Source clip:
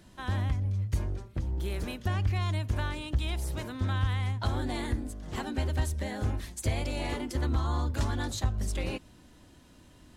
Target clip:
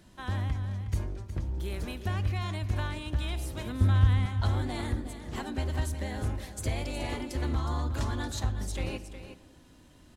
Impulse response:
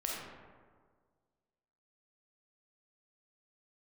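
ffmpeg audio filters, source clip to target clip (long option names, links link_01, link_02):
-filter_complex "[0:a]asettb=1/sr,asplit=3[link_01][link_02][link_03];[link_01]atrim=end=3.664[link_04];[link_02]atrim=start=3.66:end=4.26,asetpts=PTS-STARTPTS,afade=type=in:duration=0.004:curve=qsin,afade=type=out:start_time=0.596:duration=0.004:curve=qsin,lowshelf=frequency=260:gain=9.5[link_05];[link_03]atrim=start=4.256[link_06];[link_04][link_05]acrossfade=duration=0.004:curve1=hsin:curve2=qsin[link_07];[link_07][link_06]acrossfade=duration=0.004:curve1=qsin:curve2=hsin,aecho=1:1:365:0.282,asplit=2[link_08][link_09];[1:a]atrim=start_sample=2205[link_10];[link_09][link_10]afir=irnorm=-1:irlink=0,volume=-16dB[link_11];[link_08][link_11]amix=inputs=2:normalize=0,volume=-2.5dB"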